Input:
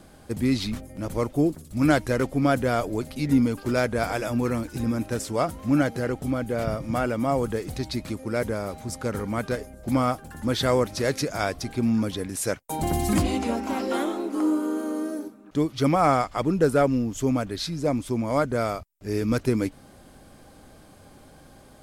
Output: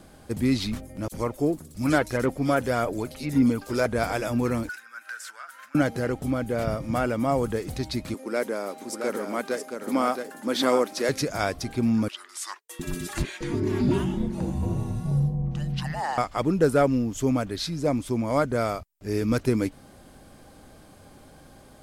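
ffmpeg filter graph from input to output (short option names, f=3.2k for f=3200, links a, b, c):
-filter_complex "[0:a]asettb=1/sr,asplit=3[a][b][c];[a]atrim=end=1.084[d];[b]atrim=start=1.08:end=3.86,asetpts=PTS-STARTPTS,afade=t=in:d=0.004:c=qsin,afade=t=out:st=2.776:d=0.004:c=qsin,lowshelf=f=140:g=-7.5,aphaser=in_gain=1:out_gain=1:delay=2.4:decay=0.3:speed=1.7:type=triangular,acrossover=split=3200[e][f];[e]adelay=40[g];[g][f]amix=inputs=2:normalize=0,atrim=end_sample=122598[h];[c]atrim=start=3.856[i];[d][h]acrossfade=d=0.004:c1=hsin:c2=qsin[j];[j][i]acrossfade=d=0.004:c1=qsin:c2=hsin,asettb=1/sr,asplit=3[k][l][m];[k]atrim=end=4.694[n];[l]atrim=start=4.69:end=5.75,asetpts=PTS-STARTPTS,afade=t=in:d=0.004:c=qsin,afade=t=out:st=1.056:d=0.004:c=qsin,acompressor=threshold=-35dB:ratio=10:attack=3.2:release=140:knee=1:detection=peak,highpass=f=1.5k:t=q:w=9.4,asoftclip=type=hard:threshold=-29dB[o];[m]atrim=start=5.746[p];[n][o]acrossfade=d=0.004:c1=hsin:c2=qsin[q];[q][p]acrossfade=d=0.004:c1=qsin:c2=hsin,asettb=1/sr,asplit=3[r][s][t];[r]atrim=end=8.144[u];[s]atrim=start=8.14:end=11.09,asetpts=PTS-STARTPTS,afade=t=in:d=0.004:c=qsin,afade=t=out:st=2.946:d=0.004:c=qsin,highpass=f=240:w=0.5412,highpass=f=240:w=1.3066,aecho=1:1:671:0.531,atrim=end_sample=130095[v];[t]atrim=start=11.086[w];[u][v]acrossfade=d=0.004:c1=hsin:c2=qsin[x];[x][w]acrossfade=d=0.004:c1=qsin:c2=hsin,asettb=1/sr,asplit=3[y][z][aa];[y]atrim=end=12.084[ab];[z]atrim=start=12.08:end=16.18,asetpts=PTS-STARTPTS,afade=t=in:d=0.004:c=qsin,afade=t=out:st=4.096:d=0.004:c=qsin,highshelf=f=7.3k:g=-8.5,afreqshift=-450,acrossover=split=690[ac][ad];[ac]adelay=710[ae];[ae][ad]amix=inputs=2:normalize=0,atrim=end_sample=180810[af];[aa]atrim=start=16.176[ag];[ab][af]acrossfade=d=0.004:c1=hsin:c2=qsin[ah];[ah][ag]acrossfade=d=0.004:c1=qsin:c2=hsin"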